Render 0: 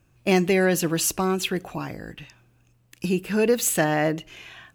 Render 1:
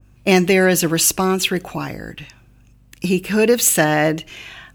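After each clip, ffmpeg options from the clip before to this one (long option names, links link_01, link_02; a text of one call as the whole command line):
ffmpeg -i in.wav -af "aeval=exprs='val(0)+0.00158*(sin(2*PI*50*n/s)+sin(2*PI*2*50*n/s)/2+sin(2*PI*3*50*n/s)/3+sin(2*PI*4*50*n/s)/4+sin(2*PI*5*50*n/s)/5)':channel_layout=same,adynamicequalizer=threshold=0.0126:dfrequency=1600:dqfactor=0.7:tfrequency=1600:tqfactor=0.7:attack=5:release=100:ratio=0.375:range=1.5:mode=boostabove:tftype=highshelf,volume=5.5dB" out.wav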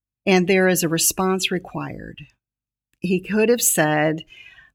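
ffmpeg -i in.wav -af "agate=range=-24dB:threshold=-43dB:ratio=16:detection=peak,afftdn=noise_reduction=15:noise_floor=-30,volume=-2.5dB" out.wav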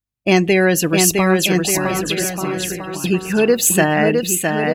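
ffmpeg -i in.wav -af "aecho=1:1:660|1188|1610|1948|2219:0.631|0.398|0.251|0.158|0.1,volume=2.5dB" out.wav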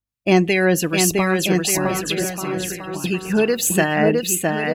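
ffmpeg -i in.wav -filter_complex "[0:a]acrossover=split=1300[link_01][link_02];[link_01]aeval=exprs='val(0)*(1-0.5/2+0.5/2*cos(2*PI*2.7*n/s))':channel_layout=same[link_03];[link_02]aeval=exprs='val(0)*(1-0.5/2-0.5/2*cos(2*PI*2.7*n/s))':channel_layout=same[link_04];[link_03][link_04]amix=inputs=2:normalize=0" out.wav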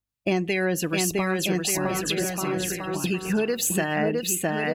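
ffmpeg -i in.wav -af "acompressor=threshold=-23dB:ratio=3" out.wav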